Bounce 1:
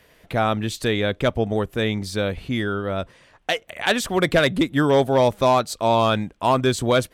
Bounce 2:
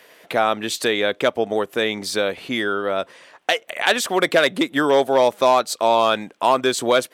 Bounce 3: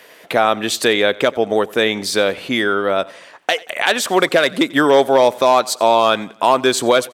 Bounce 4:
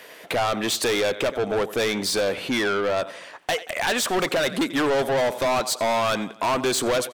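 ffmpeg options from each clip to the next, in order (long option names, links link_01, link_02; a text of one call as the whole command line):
ffmpeg -i in.wav -filter_complex "[0:a]highpass=360,asplit=2[link_01][link_02];[link_02]acompressor=threshold=-27dB:ratio=6,volume=2dB[link_03];[link_01][link_03]amix=inputs=2:normalize=0" out.wav
ffmpeg -i in.wav -af "alimiter=limit=-6.5dB:level=0:latency=1:release=242,aecho=1:1:90|180|270:0.0794|0.0357|0.0161,volume=5dB" out.wav
ffmpeg -i in.wav -af "asoftclip=type=tanh:threshold=-19dB" out.wav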